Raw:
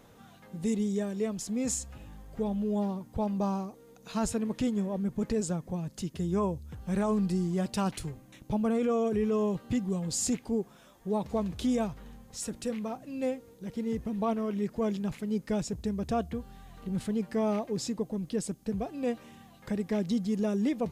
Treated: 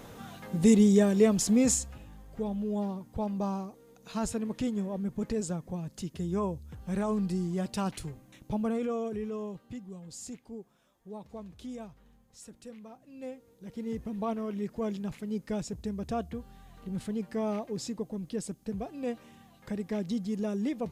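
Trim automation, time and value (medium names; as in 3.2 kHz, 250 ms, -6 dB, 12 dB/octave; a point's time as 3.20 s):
1.53 s +9 dB
2.06 s -2 dB
8.64 s -2 dB
9.85 s -13 dB
12.96 s -13 dB
13.91 s -3 dB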